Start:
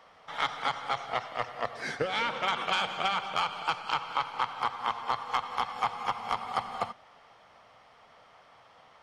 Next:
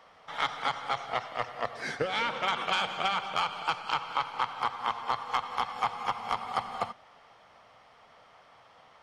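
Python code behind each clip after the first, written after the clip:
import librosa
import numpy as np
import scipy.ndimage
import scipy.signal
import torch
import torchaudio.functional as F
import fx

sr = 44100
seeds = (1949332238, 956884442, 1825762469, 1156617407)

y = x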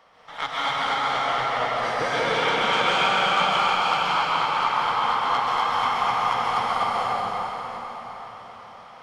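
y = fx.rev_plate(x, sr, seeds[0], rt60_s=5.0, hf_ratio=0.8, predelay_ms=115, drr_db=-9.0)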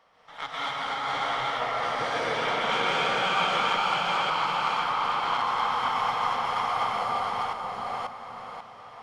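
y = fx.reverse_delay(x, sr, ms=538, wet_db=-1.0)
y = y * librosa.db_to_amplitude(-6.5)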